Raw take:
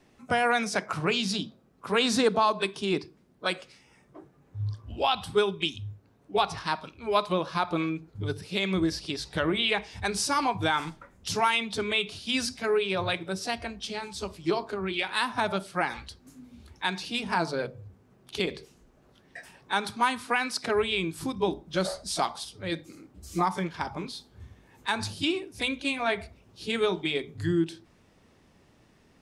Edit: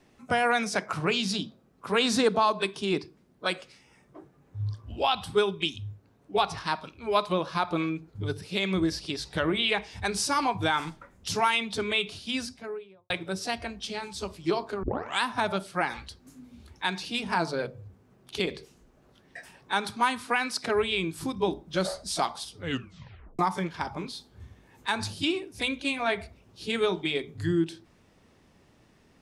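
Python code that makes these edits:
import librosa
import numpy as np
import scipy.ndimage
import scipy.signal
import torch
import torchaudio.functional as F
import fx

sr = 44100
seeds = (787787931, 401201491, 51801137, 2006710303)

y = fx.studio_fade_out(x, sr, start_s=12.07, length_s=1.03)
y = fx.edit(y, sr, fx.tape_start(start_s=14.83, length_s=0.38),
    fx.tape_stop(start_s=22.58, length_s=0.81), tone=tone)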